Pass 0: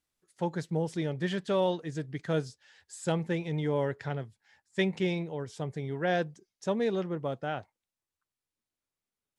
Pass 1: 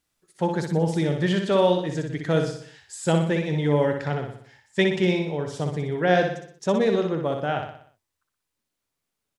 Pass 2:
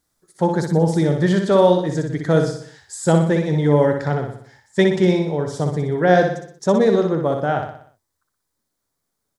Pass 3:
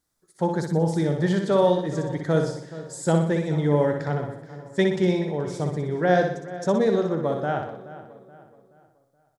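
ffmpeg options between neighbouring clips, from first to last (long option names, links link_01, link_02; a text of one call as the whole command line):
ffmpeg -i in.wav -af "aecho=1:1:61|122|183|244|305|366:0.531|0.26|0.127|0.0625|0.0306|0.015,volume=7dB" out.wav
ffmpeg -i in.wav -af "equalizer=frequency=2700:width=2.3:gain=-13,volume=6dB" out.wav
ffmpeg -i in.wav -filter_complex "[0:a]asplit=2[link_01][link_02];[link_02]adelay=426,lowpass=frequency=3500:poles=1,volume=-15.5dB,asplit=2[link_03][link_04];[link_04]adelay=426,lowpass=frequency=3500:poles=1,volume=0.41,asplit=2[link_05][link_06];[link_06]adelay=426,lowpass=frequency=3500:poles=1,volume=0.41,asplit=2[link_07][link_08];[link_08]adelay=426,lowpass=frequency=3500:poles=1,volume=0.41[link_09];[link_01][link_03][link_05][link_07][link_09]amix=inputs=5:normalize=0,volume=-5.5dB" out.wav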